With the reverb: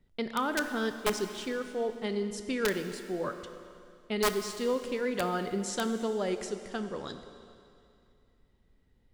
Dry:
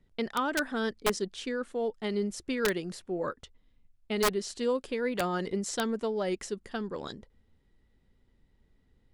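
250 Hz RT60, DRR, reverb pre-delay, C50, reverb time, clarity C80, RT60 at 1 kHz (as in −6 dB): 2.5 s, 8.0 dB, 17 ms, 9.0 dB, 2.5 s, 9.5 dB, 2.5 s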